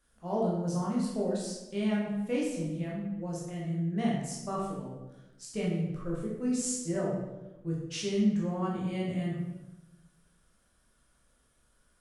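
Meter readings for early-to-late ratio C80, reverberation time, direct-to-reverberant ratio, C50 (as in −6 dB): 4.5 dB, 1.1 s, −5.0 dB, 1.0 dB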